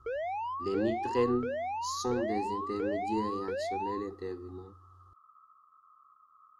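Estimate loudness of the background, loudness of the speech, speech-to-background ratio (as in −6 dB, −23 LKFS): −36.0 LKFS, −35.0 LKFS, 1.0 dB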